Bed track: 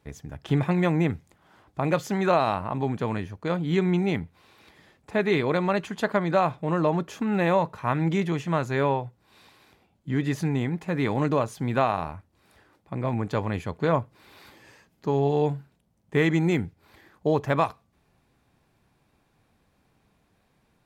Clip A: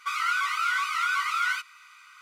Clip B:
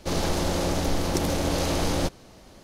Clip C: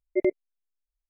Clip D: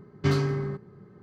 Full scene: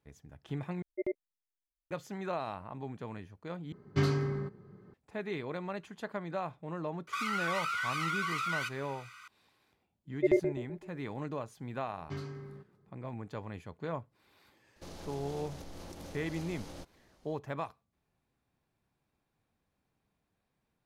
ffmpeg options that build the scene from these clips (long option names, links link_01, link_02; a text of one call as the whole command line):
ffmpeg -i bed.wav -i cue0.wav -i cue1.wav -i cue2.wav -i cue3.wav -filter_complex "[3:a]asplit=2[link_01][link_02];[4:a]asplit=2[link_03][link_04];[0:a]volume=-14.5dB[link_05];[1:a]acompressor=threshold=-30dB:ratio=6:attack=3.2:release=140:knee=1:detection=peak[link_06];[link_02]asplit=2[link_07][link_08];[link_08]adelay=127,lowpass=frequency=930:poles=1,volume=-7dB,asplit=2[link_09][link_10];[link_10]adelay=127,lowpass=frequency=930:poles=1,volume=0.5,asplit=2[link_11][link_12];[link_12]adelay=127,lowpass=frequency=930:poles=1,volume=0.5,asplit=2[link_13][link_14];[link_14]adelay=127,lowpass=frequency=930:poles=1,volume=0.5,asplit=2[link_15][link_16];[link_16]adelay=127,lowpass=frequency=930:poles=1,volume=0.5,asplit=2[link_17][link_18];[link_18]adelay=127,lowpass=frequency=930:poles=1,volume=0.5[link_19];[link_07][link_09][link_11][link_13][link_15][link_17][link_19]amix=inputs=7:normalize=0[link_20];[2:a]alimiter=limit=-20.5dB:level=0:latency=1:release=174[link_21];[link_05]asplit=3[link_22][link_23][link_24];[link_22]atrim=end=0.824[link_25];[link_01]atrim=end=1.09,asetpts=PTS-STARTPTS,volume=-11dB[link_26];[link_23]atrim=start=1.906:end=3.724[link_27];[link_03]atrim=end=1.22,asetpts=PTS-STARTPTS,volume=-4.5dB[link_28];[link_24]atrim=start=4.936[link_29];[link_06]atrim=end=2.21,asetpts=PTS-STARTPTS,volume=-1dB,afade=type=in:duration=0.004:curve=hsin,afade=type=out:start_time=2.206:duration=0.004:curve=hsin,adelay=7070[link_30];[link_20]atrim=end=1.09,asetpts=PTS-STARTPTS,volume=-2dB,afade=type=in:duration=0.004:curve=hsin,afade=type=out:start_time=1.086:duration=0.004:curve=hsin,adelay=10070[link_31];[link_04]atrim=end=1.22,asetpts=PTS-STARTPTS,volume=-17dB,afade=type=in:duration=0.004:curve=hsin,afade=type=out:start_time=1.216:duration=0.004:curve=hsin,adelay=523026S[link_32];[link_21]atrim=end=2.63,asetpts=PTS-STARTPTS,volume=-16.5dB,afade=type=in:duration=0.004:curve=hsin,afade=type=out:start_time=2.626:duration=0.004:curve=hsin,adelay=650916S[link_33];[link_25][link_26]acrossfade=duration=0.004:curve1=hsin:curve2=hsin[link_34];[link_34][link_27]acrossfade=duration=0.004:curve1=hsin:curve2=hsin[link_35];[link_35][link_28]acrossfade=duration=0.004:curve1=hsin:curve2=hsin[link_36];[link_36][link_29]acrossfade=duration=0.004:curve1=hsin:curve2=hsin[link_37];[link_37][link_30][link_31][link_32][link_33]amix=inputs=5:normalize=0" out.wav